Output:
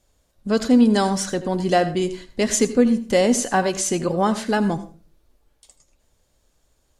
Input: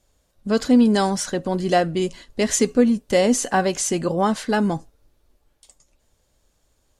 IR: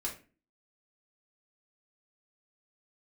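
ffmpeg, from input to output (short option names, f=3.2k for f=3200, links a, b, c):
-filter_complex "[0:a]asplit=2[a][b];[1:a]atrim=start_sample=2205,adelay=79[c];[b][c]afir=irnorm=-1:irlink=0,volume=-15dB[d];[a][d]amix=inputs=2:normalize=0"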